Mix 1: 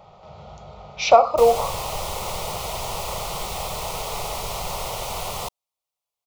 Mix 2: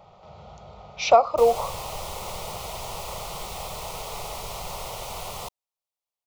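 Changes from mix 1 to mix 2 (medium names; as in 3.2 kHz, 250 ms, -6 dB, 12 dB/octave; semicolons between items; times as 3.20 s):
speech: send -11.0 dB; background -5.5 dB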